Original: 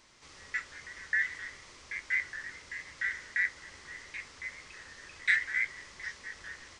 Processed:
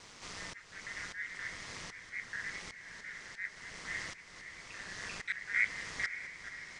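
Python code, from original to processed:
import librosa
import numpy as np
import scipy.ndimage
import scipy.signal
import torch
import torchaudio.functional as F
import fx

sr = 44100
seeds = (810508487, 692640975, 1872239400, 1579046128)

y = x * np.sin(2.0 * np.pi * 100.0 * np.arange(len(x)) / sr)
y = fx.auto_swell(y, sr, attack_ms=669.0)
y = fx.echo_diffused(y, sr, ms=560, feedback_pct=43, wet_db=-10.5)
y = F.gain(torch.from_numpy(y), 10.5).numpy()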